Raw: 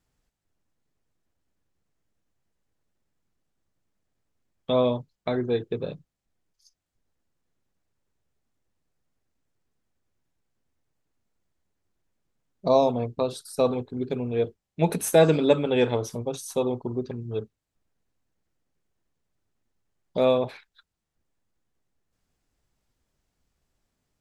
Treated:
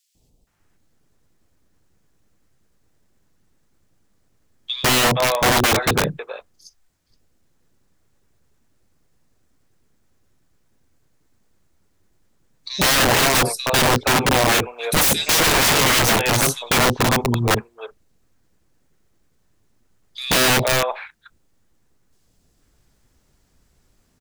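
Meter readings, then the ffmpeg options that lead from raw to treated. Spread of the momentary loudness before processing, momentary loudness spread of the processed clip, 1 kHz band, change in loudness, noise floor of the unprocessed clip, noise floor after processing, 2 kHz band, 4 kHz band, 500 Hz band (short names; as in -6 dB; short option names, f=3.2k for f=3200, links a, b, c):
12 LU, 9 LU, +12.5 dB, +8.5 dB, -83 dBFS, -63 dBFS, +21.0 dB, +20.0 dB, +1.0 dB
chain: -filter_complex "[0:a]acontrast=57,acrossover=split=760|2800[a][b][c];[a]adelay=150[d];[b]adelay=470[e];[d][e][c]amix=inputs=3:normalize=0,aeval=exprs='(mod(9.44*val(0)+1,2)-1)/9.44':c=same,volume=8.5dB"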